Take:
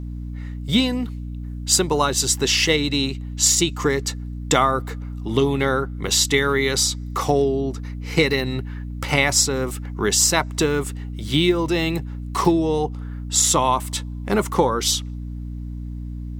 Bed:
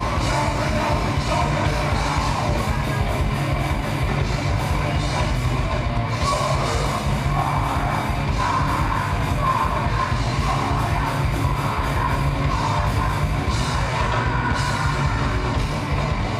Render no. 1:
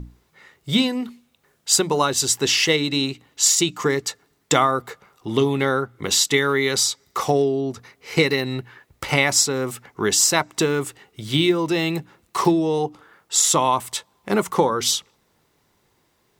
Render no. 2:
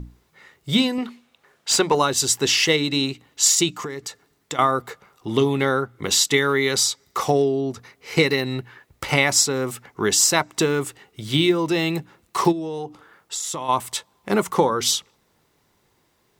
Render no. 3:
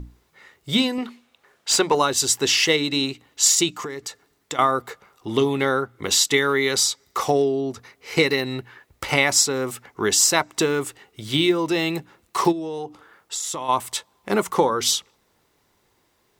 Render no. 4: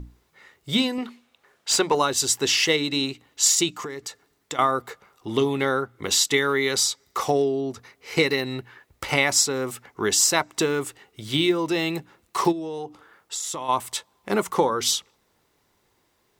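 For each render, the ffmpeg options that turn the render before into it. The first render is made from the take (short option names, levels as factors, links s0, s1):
-af "bandreject=f=60:t=h:w=6,bandreject=f=120:t=h:w=6,bandreject=f=180:t=h:w=6,bandreject=f=240:t=h:w=6,bandreject=f=300:t=h:w=6"
-filter_complex "[0:a]asettb=1/sr,asplit=3[s0][s1][s2];[s0]atrim=end=0.984[s3];[s1]atrim=start=0.98:end=1.95,asetpts=PTS-STARTPTS,afade=t=in:d=0.004:c=qsin,afade=t=out:st=0.966:d=0.004:c=qsin,asplit=2[s4][s5];[s5]highpass=f=720:p=1,volume=4.47,asoftclip=type=tanh:threshold=0.75[s6];[s4][s6]amix=inputs=2:normalize=0,lowpass=f=2600:p=1,volume=0.501[s7];[s2]atrim=start=1.946[s8];[s3][s7]acrossfade=d=0.004:c1=hsin:c2=qsin[s9];[s9][s8]acrossfade=d=0.004:c1=qsin:c2=hsin,asettb=1/sr,asplit=3[s10][s11][s12];[s10]atrim=end=3.724[s13];[s11]atrim=start=3.72:end=4.59,asetpts=PTS-STARTPTS,afade=t=in:d=0.004:c=qsin,afade=t=out:st=0.866:d=0.004:c=qsin,acompressor=threshold=0.0447:ratio=6:attack=3.2:release=140:knee=1:detection=peak[s14];[s12]atrim=start=4.586[s15];[s13][s14]acrossfade=d=0.004:c1=hsin:c2=qsin[s16];[s16][s15]acrossfade=d=0.004:c1=qsin:c2=hsin,asplit=3[s17][s18][s19];[s17]afade=t=out:st=12.51:d=0.02[s20];[s18]acompressor=threshold=0.0501:ratio=5:attack=3.2:release=140:knee=1:detection=peak,afade=t=in:st=12.51:d=0.02,afade=t=out:st=13.68:d=0.02[s21];[s19]afade=t=in:st=13.68:d=0.02[s22];[s20][s21][s22]amix=inputs=3:normalize=0"
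-af "equalizer=f=150:w=1.3:g=-4.5"
-af "volume=0.794"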